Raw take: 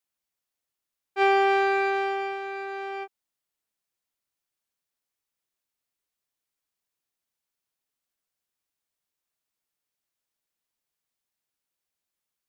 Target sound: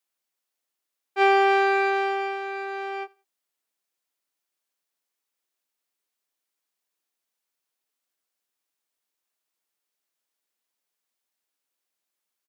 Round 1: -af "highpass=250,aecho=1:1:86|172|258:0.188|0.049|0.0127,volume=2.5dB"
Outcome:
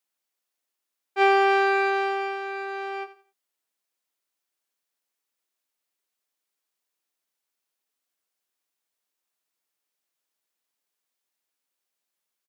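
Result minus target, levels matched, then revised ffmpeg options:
echo-to-direct +11.5 dB
-af "highpass=250,aecho=1:1:86|172:0.0501|0.013,volume=2.5dB"

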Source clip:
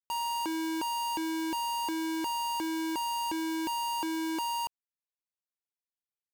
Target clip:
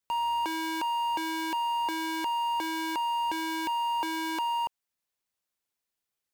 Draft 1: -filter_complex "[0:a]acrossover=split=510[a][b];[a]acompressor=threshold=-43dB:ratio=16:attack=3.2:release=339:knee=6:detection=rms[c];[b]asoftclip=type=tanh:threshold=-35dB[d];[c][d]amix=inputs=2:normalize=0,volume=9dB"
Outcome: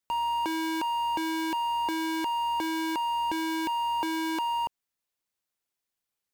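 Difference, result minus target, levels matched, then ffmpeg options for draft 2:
compressor: peak gain reduction -9 dB
-filter_complex "[0:a]acrossover=split=510[a][b];[a]acompressor=threshold=-52.5dB:ratio=16:attack=3.2:release=339:knee=6:detection=rms[c];[b]asoftclip=type=tanh:threshold=-35dB[d];[c][d]amix=inputs=2:normalize=0,volume=9dB"

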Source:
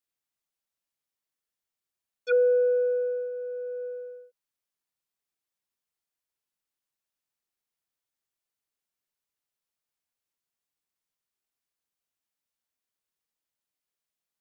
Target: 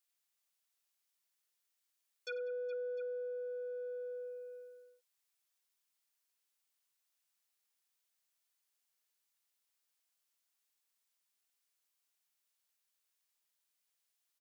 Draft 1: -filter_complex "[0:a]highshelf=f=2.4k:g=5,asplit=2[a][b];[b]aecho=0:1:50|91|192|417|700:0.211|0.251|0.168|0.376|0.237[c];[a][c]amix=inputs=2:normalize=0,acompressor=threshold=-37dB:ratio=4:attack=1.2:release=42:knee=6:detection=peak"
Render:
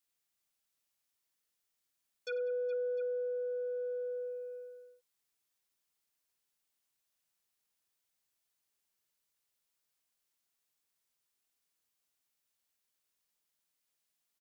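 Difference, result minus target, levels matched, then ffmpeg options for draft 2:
1000 Hz band -4.0 dB
-filter_complex "[0:a]highshelf=f=2.4k:g=5,asplit=2[a][b];[b]aecho=0:1:50|91|192|417|700:0.211|0.251|0.168|0.376|0.237[c];[a][c]amix=inputs=2:normalize=0,acompressor=threshold=-37dB:ratio=4:attack=1.2:release=42:knee=6:detection=peak,highpass=f=720:p=1"

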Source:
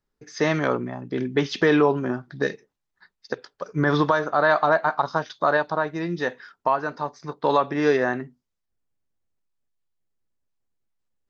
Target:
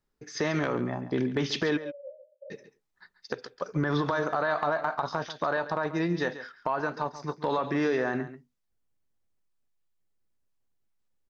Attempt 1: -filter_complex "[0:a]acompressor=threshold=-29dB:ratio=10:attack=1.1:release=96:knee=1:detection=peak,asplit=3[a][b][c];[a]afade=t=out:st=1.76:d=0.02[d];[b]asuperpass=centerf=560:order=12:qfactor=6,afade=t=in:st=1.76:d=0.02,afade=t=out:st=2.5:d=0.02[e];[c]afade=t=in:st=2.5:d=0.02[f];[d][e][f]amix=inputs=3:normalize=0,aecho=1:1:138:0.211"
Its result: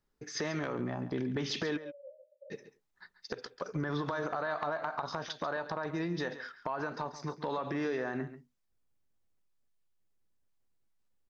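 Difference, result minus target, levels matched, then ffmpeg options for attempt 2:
compressor: peak gain reduction +7 dB
-filter_complex "[0:a]acompressor=threshold=-21dB:ratio=10:attack=1.1:release=96:knee=1:detection=peak,asplit=3[a][b][c];[a]afade=t=out:st=1.76:d=0.02[d];[b]asuperpass=centerf=560:order=12:qfactor=6,afade=t=in:st=1.76:d=0.02,afade=t=out:st=2.5:d=0.02[e];[c]afade=t=in:st=2.5:d=0.02[f];[d][e][f]amix=inputs=3:normalize=0,aecho=1:1:138:0.211"

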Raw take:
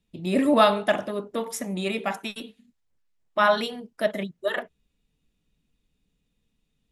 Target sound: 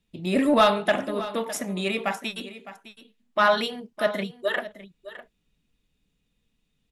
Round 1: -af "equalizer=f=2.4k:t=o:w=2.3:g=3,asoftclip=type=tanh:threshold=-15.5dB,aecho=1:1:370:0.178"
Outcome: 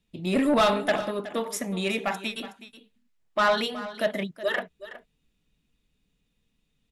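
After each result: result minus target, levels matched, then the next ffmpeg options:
echo 0.239 s early; soft clip: distortion +8 dB
-af "equalizer=f=2.4k:t=o:w=2.3:g=3,asoftclip=type=tanh:threshold=-15.5dB,aecho=1:1:609:0.178"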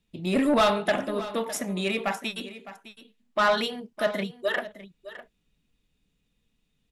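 soft clip: distortion +8 dB
-af "equalizer=f=2.4k:t=o:w=2.3:g=3,asoftclip=type=tanh:threshold=-8.5dB,aecho=1:1:609:0.178"

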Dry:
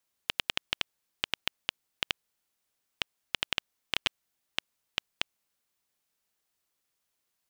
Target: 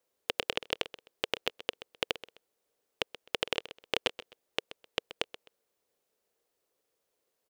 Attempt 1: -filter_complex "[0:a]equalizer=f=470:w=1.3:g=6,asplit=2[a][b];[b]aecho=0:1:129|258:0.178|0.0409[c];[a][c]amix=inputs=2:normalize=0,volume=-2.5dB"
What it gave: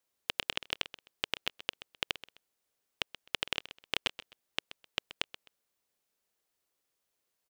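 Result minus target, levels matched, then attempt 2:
500 Hz band -8.5 dB
-filter_complex "[0:a]equalizer=f=470:w=1.3:g=18,asplit=2[a][b];[b]aecho=0:1:129|258:0.178|0.0409[c];[a][c]amix=inputs=2:normalize=0,volume=-2.5dB"

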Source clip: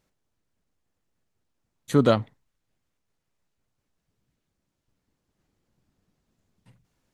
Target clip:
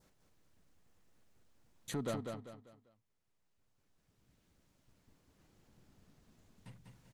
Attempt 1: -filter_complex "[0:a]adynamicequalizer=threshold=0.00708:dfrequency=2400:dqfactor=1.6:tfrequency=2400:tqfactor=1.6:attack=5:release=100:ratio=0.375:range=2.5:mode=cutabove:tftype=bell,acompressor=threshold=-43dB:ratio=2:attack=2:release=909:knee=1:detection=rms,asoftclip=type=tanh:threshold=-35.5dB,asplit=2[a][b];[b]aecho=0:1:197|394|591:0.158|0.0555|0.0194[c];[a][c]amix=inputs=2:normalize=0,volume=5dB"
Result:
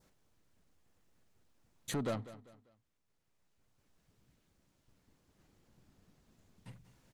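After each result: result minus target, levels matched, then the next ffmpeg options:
echo-to-direct -11 dB; compressor: peak gain reduction -4.5 dB
-filter_complex "[0:a]adynamicequalizer=threshold=0.00708:dfrequency=2400:dqfactor=1.6:tfrequency=2400:tqfactor=1.6:attack=5:release=100:ratio=0.375:range=2.5:mode=cutabove:tftype=bell,acompressor=threshold=-43dB:ratio=2:attack=2:release=909:knee=1:detection=rms,asoftclip=type=tanh:threshold=-35.5dB,asplit=2[a][b];[b]aecho=0:1:197|394|591|788:0.562|0.197|0.0689|0.0241[c];[a][c]amix=inputs=2:normalize=0,volume=5dB"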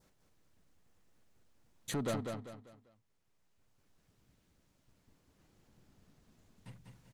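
compressor: peak gain reduction -4.5 dB
-filter_complex "[0:a]adynamicequalizer=threshold=0.00708:dfrequency=2400:dqfactor=1.6:tfrequency=2400:tqfactor=1.6:attack=5:release=100:ratio=0.375:range=2.5:mode=cutabove:tftype=bell,acompressor=threshold=-52.5dB:ratio=2:attack=2:release=909:knee=1:detection=rms,asoftclip=type=tanh:threshold=-35.5dB,asplit=2[a][b];[b]aecho=0:1:197|394|591|788:0.562|0.197|0.0689|0.0241[c];[a][c]amix=inputs=2:normalize=0,volume=5dB"

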